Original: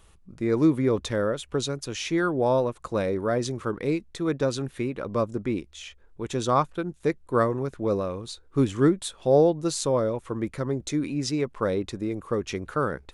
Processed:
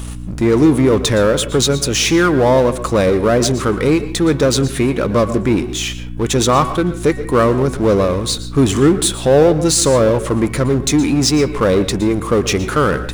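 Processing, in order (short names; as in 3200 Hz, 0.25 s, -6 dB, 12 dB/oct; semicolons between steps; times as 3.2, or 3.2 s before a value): high shelf 4800 Hz +7.5 dB; de-hum 374.1 Hz, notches 9; in parallel at +1 dB: limiter -19 dBFS, peak gain reduction 10 dB; on the sum: power-law curve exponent 0.7; hum 60 Hz, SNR 12 dB; on a send at -13 dB: reverb RT60 0.35 s, pre-delay 0.112 s; on the sum: gain +3 dB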